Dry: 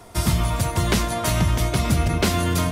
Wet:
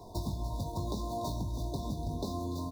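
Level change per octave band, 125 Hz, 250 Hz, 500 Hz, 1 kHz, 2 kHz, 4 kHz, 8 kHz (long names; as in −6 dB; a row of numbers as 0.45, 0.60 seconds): −15.5 dB, −13.5 dB, −13.0 dB, −13.5 dB, below −40 dB, −19.0 dB, −22.0 dB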